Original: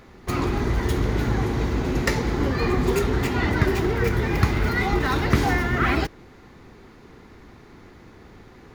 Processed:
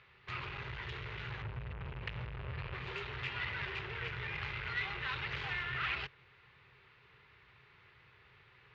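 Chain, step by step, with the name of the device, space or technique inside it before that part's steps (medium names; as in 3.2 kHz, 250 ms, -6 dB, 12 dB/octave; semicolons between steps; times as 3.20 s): 1.42–2.74 s: RIAA curve playback; scooped metal amplifier (valve stage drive 23 dB, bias 0.45; cabinet simulation 110–3400 Hz, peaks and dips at 130 Hz +7 dB, 210 Hz -8 dB, 400 Hz +6 dB, 730 Hz -7 dB, 2.7 kHz +5 dB; amplifier tone stack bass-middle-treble 10-0-10); trim -1.5 dB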